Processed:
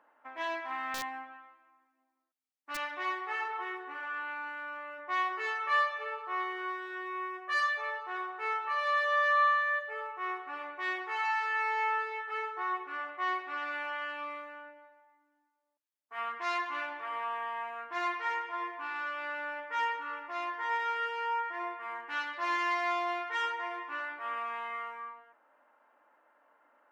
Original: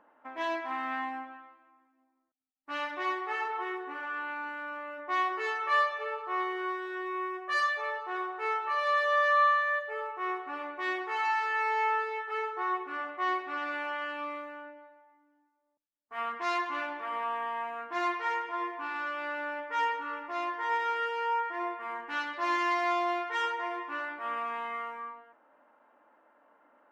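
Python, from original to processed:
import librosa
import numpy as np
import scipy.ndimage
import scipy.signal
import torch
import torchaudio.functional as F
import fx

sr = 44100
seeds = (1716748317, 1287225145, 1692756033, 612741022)

y = fx.highpass(x, sr, hz=490.0, slope=6)
y = fx.peak_eq(y, sr, hz=2000.0, db=2.5, octaves=1.5)
y = fx.overflow_wrap(y, sr, gain_db=25.5, at=(0.94, 2.77))
y = y * librosa.db_to_amplitude(-2.5)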